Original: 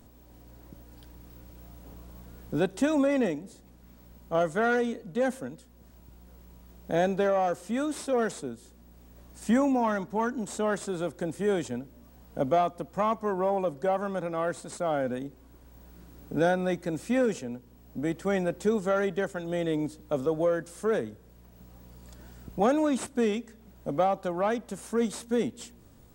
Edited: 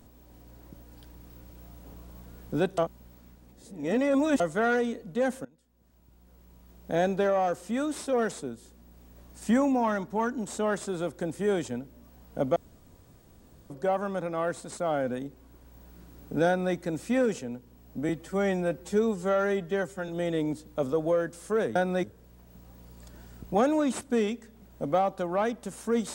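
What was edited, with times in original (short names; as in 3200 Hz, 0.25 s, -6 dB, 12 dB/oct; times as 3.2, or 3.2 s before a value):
2.78–4.4 reverse
5.45–7.09 fade in, from -22 dB
12.56–13.7 room tone
16.47–16.75 copy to 21.09
18.09–19.42 stretch 1.5×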